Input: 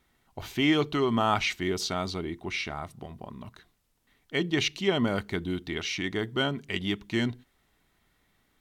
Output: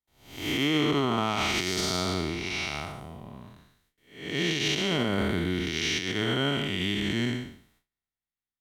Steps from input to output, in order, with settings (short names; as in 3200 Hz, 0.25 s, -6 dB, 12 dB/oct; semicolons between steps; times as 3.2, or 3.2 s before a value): time blur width 0.34 s; gate with hold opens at -58 dBFS; high shelf 2500 Hz +7.5 dB; limiter -23.5 dBFS, peak gain reduction 9 dB; three-band expander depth 40%; gain +6.5 dB